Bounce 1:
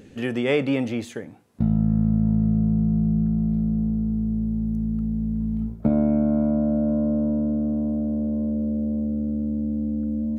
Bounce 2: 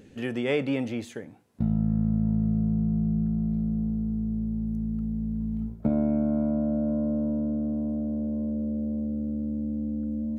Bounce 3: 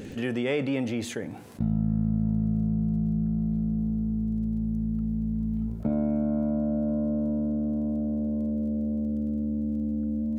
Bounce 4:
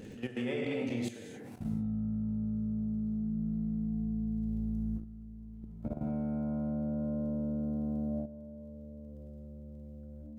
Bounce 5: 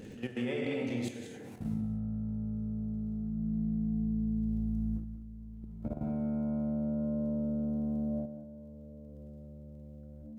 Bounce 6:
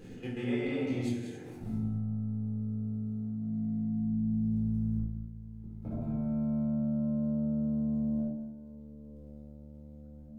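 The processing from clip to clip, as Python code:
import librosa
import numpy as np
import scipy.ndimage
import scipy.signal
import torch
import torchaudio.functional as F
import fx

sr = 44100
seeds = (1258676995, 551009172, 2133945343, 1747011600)

y1 = fx.notch(x, sr, hz=1200.0, q=24.0)
y1 = y1 * 10.0 ** (-4.5 / 20.0)
y2 = fx.dmg_crackle(y1, sr, seeds[0], per_s=17.0, level_db=-51.0)
y2 = fx.env_flatten(y2, sr, amount_pct=50)
y2 = y2 * 10.0 ** (-3.0 / 20.0)
y3 = fx.rev_gated(y2, sr, seeds[1], gate_ms=270, shape='flat', drr_db=-2.0)
y3 = fx.level_steps(y3, sr, step_db=13)
y3 = y3 * 10.0 ** (-7.5 / 20.0)
y4 = y3 + 10.0 ** (-11.0 / 20.0) * np.pad(y3, (int(183 * sr / 1000.0), 0))[:len(y3)]
y5 = fx.room_shoebox(y4, sr, seeds[2], volume_m3=490.0, walls='furnished', distance_m=3.9)
y5 = y5 * 10.0 ** (-7.0 / 20.0)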